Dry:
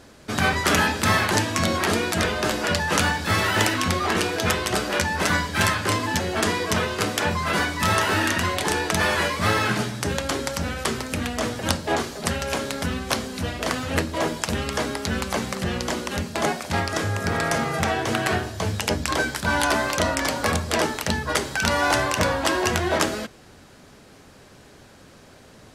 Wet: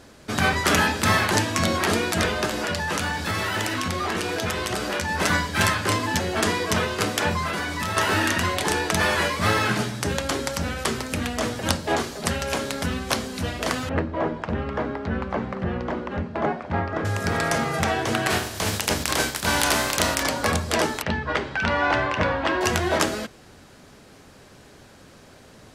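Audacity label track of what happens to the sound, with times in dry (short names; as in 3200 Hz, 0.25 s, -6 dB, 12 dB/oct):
2.450000	5.090000	compressor 4:1, threshold -22 dBFS
7.460000	7.970000	compressor, threshold -23 dBFS
13.890000	17.050000	LPF 1500 Hz
18.290000	20.220000	spectral contrast lowered exponent 0.58
21.020000	22.610000	Chebyshev low-pass 2500 Hz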